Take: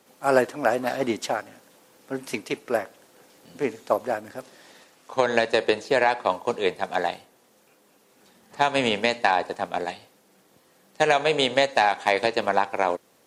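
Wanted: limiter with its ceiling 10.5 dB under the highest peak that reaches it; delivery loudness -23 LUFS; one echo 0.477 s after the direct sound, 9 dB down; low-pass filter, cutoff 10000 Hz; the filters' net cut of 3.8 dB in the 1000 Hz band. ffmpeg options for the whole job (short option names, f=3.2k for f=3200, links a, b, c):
-af "lowpass=10k,equalizer=f=1k:t=o:g=-5.5,alimiter=limit=-16.5dB:level=0:latency=1,aecho=1:1:477:0.355,volume=7.5dB"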